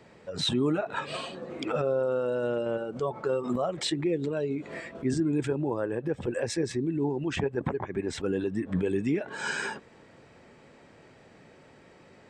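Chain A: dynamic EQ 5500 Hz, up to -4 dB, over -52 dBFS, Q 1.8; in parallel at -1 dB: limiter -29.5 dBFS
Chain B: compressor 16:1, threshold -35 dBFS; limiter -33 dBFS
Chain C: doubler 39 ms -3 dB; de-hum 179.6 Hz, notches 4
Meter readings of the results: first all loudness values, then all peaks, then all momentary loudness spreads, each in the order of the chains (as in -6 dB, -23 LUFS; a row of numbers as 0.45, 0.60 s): -27.5, -42.0, -28.5 LUFS; -16.0, -33.0, -13.5 dBFS; 5, 14, 6 LU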